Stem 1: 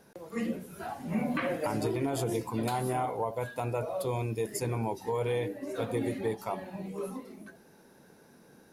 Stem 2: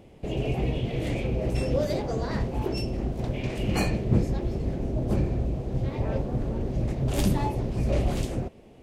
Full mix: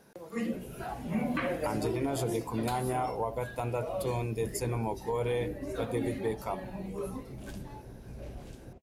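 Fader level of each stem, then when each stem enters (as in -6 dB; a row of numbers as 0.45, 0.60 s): -0.5, -19.0 dB; 0.00, 0.30 s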